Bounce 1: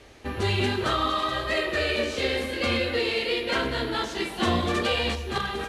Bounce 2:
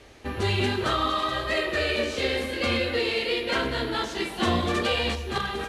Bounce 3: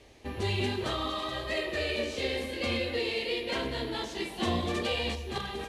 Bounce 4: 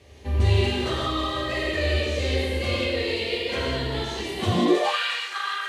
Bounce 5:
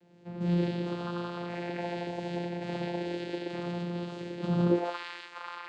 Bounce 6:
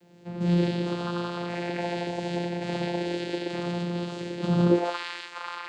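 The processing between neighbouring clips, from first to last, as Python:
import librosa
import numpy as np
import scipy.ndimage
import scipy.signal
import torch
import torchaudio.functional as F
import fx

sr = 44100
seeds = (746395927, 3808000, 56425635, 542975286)

y1 = x
y2 = fx.peak_eq(y1, sr, hz=1400.0, db=-9.0, octaves=0.47)
y2 = F.gain(torch.from_numpy(y2), -5.0).numpy()
y3 = fx.rev_gated(y2, sr, seeds[0], gate_ms=210, shape='flat', drr_db=-4.0)
y3 = fx.filter_sweep_highpass(y3, sr, from_hz=76.0, to_hz=1400.0, start_s=4.43, end_s=4.98, q=6.9)
y4 = fx.vocoder(y3, sr, bands=8, carrier='saw', carrier_hz=174.0)
y4 = F.gain(torch.from_numpy(y4), -6.0).numpy()
y5 = fx.high_shelf(y4, sr, hz=5500.0, db=9.0)
y5 = F.gain(torch.from_numpy(y5), 4.5).numpy()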